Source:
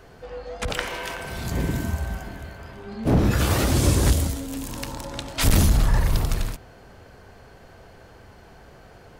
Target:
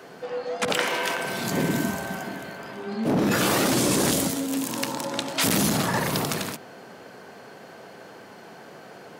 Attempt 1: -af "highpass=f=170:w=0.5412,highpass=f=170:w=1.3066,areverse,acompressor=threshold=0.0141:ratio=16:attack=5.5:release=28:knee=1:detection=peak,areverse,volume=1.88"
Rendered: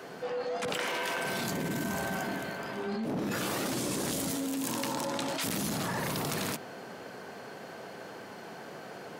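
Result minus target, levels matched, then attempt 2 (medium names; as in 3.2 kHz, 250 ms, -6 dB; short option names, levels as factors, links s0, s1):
compression: peak gain reduction +11 dB
-af "highpass=f=170:w=0.5412,highpass=f=170:w=1.3066,areverse,acompressor=threshold=0.0531:ratio=16:attack=5.5:release=28:knee=1:detection=peak,areverse,volume=1.88"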